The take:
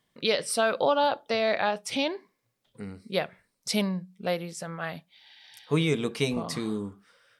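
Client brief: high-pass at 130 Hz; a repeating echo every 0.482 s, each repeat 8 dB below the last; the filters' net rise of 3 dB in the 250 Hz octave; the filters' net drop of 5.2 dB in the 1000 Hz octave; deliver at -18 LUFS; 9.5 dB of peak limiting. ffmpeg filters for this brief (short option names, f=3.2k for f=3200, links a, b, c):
-af "highpass=130,equalizer=f=250:t=o:g=5,equalizer=f=1k:t=o:g=-7.5,alimiter=limit=-20.5dB:level=0:latency=1,aecho=1:1:482|964|1446|1928|2410:0.398|0.159|0.0637|0.0255|0.0102,volume=14dB"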